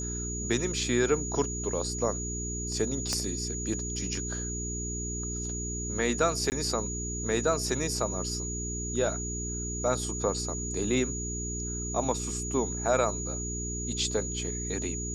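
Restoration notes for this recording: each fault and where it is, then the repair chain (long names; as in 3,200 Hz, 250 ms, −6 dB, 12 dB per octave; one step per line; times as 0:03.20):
mains hum 60 Hz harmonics 7 −36 dBFS
whistle 6,800 Hz −35 dBFS
0:03.13: click −15 dBFS
0:06.50–0:06.52: drop-out 19 ms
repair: click removal
hum removal 60 Hz, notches 7
notch filter 6,800 Hz, Q 30
repair the gap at 0:06.50, 19 ms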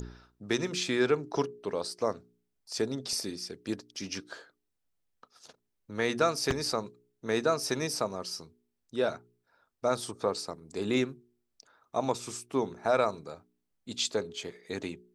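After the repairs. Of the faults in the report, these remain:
0:03.13: click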